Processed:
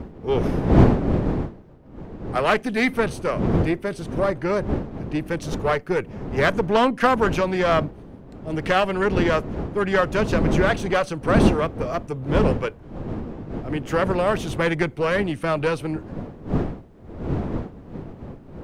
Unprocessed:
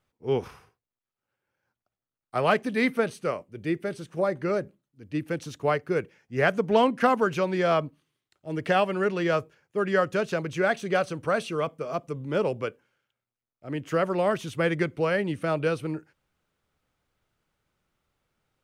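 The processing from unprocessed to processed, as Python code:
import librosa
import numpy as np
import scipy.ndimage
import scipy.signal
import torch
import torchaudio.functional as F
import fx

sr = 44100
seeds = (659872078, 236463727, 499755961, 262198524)

y = fx.diode_clip(x, sr, knee_db=-25.5)
y = fx.dmg_wind(y, sr, seeds[0], corner_hz=300.0, level_db=-32.0)
y = y * 10.0 ** (6.0 / 20.0)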